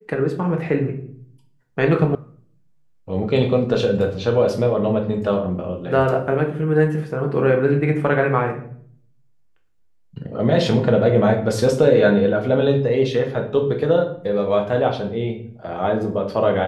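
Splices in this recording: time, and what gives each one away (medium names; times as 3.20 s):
2.15 s: sound stops dead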